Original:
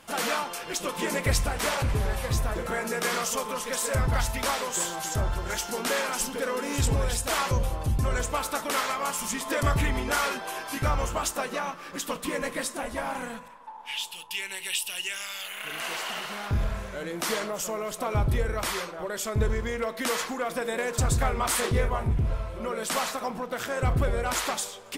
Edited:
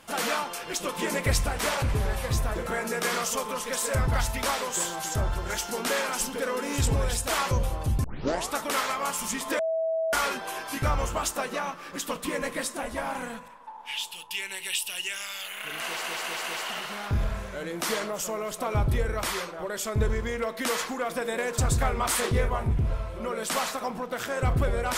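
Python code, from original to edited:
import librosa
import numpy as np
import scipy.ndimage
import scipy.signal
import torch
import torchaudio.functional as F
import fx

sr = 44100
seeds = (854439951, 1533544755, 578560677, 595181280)

y = fx.edit(x, sr, fx.tape_start(start_s=8.04, length_s=0.5),
    fx.bleep(start_s=9.59, length_s=0.54, hz=649.0, db=-24.0),
    fx.stutter(start_s=15.84, slice_s=0.2, count=4), tone=tone)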